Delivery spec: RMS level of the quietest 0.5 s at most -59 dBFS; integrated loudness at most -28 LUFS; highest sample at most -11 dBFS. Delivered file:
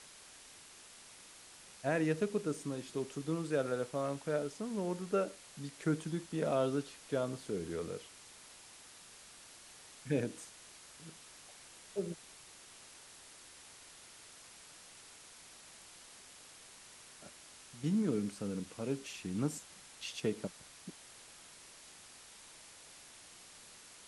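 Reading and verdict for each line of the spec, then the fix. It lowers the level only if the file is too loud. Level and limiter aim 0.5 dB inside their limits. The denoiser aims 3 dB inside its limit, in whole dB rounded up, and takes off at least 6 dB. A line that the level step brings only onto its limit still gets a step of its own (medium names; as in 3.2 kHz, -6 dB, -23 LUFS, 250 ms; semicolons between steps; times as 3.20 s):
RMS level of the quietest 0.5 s -56 dBFS: fail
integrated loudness -37.5 LUFS: pass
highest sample -19.0 dBFS: pass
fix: noise reduction 6 dB, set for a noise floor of -56 dBFS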